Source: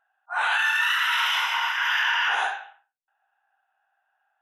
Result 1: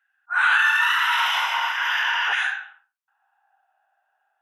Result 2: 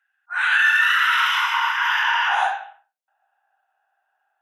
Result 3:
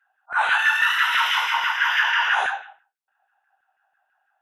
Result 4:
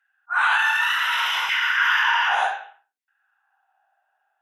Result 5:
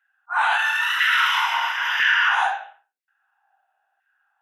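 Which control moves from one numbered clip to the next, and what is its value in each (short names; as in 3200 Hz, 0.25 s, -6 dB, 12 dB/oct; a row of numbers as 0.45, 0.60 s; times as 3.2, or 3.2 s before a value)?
LFO high-pass, rate: 0.43, 0.21, 6.1, 0.67, 1 Hz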